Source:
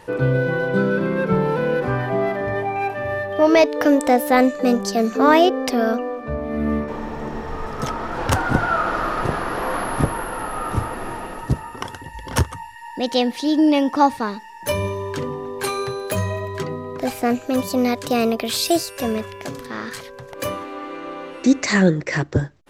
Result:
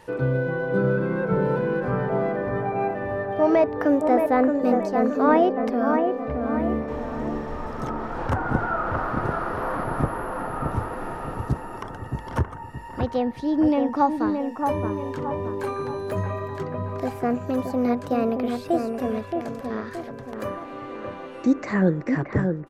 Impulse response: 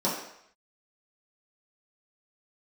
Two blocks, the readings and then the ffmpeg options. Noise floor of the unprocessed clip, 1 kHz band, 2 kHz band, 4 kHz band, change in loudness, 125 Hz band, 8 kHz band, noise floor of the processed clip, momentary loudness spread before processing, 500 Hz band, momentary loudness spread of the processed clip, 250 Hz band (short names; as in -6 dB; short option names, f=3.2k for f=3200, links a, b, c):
-39 dBFS, -3.5 dB, -7.0 dB, -18.0 dB, -4.0 dB, -3.0 dB, under -15 dB, -38 dBFS, 14 LU, -3.0 dB, 12 LU, -3.0 dB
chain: -filter_complex "[0:a]acrossover=split=1800[a][b];[a]aecho=1:1:623|1246|1869|2492|3115:0.562|0.242|0.104|0.0447|0.0192[c];[b]acompressor=threshold=-46dB:ratio=6[d];[c][d]amix=inputs=2:normalize=0,volume=-4.5dB"